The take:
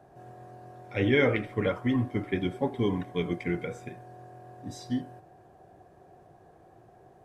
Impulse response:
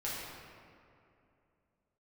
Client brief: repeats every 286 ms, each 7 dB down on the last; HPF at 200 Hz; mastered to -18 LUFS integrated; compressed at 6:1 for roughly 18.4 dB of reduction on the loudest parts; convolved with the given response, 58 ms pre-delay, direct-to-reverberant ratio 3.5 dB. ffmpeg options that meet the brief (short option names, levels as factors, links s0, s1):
-filter_complex "[0:a]highpass=200,acompressor=threshold=0.01:ratio=6,aecho=1:1:286|572|858|1144|1430:0.447|0.201|0.0905|0.0407|0.0183,asplit=2[s0][s1];[1:a]atrim=start_sample=2205,adelay=58[s2];[s1][s2]afir=irnorm=-1:irlink=0,volume=0.422[s3];[s0][s3]amix=inputs=2:normalize=0,volume=18.8"